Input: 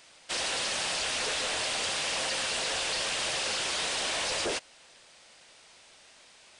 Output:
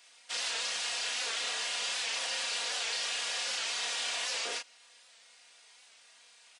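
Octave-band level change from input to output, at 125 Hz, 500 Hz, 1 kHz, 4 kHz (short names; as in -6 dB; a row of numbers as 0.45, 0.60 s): under -20 dB, -9.5 dB, -6.0 dB, -2.5 dB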